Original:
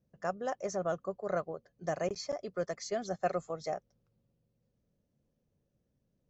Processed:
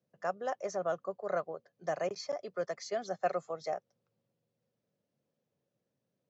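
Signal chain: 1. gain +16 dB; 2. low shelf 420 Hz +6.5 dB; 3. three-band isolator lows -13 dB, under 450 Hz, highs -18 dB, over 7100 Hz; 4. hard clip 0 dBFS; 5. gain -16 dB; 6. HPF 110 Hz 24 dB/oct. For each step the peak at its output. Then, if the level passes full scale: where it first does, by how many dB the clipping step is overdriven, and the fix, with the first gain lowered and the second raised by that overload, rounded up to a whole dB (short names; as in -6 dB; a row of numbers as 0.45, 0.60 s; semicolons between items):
-3.0, -1.0, -3.0, -3.0, -19.0, -19.5 dBFS; no overload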